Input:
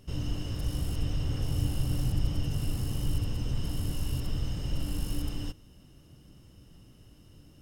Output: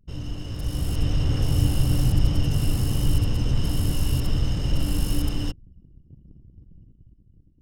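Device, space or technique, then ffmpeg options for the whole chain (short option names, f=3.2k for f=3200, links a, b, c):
voice memo with heavy noise removal: -af "anlmdn=0.0158,dynaudnorm=f=180:g=9:m=8.5dB"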